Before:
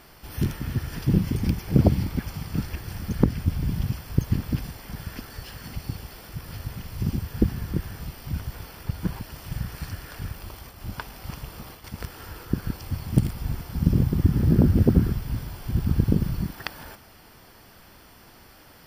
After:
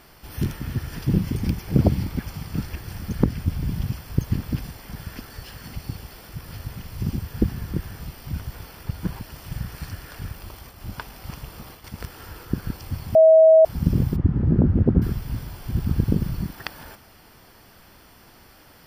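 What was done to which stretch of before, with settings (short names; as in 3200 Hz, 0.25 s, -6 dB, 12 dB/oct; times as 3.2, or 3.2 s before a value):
13.15–13.65 bleep 641 Hz -8.5 dBFS
14.16–15.02 Bessel low-pass 1300 Hz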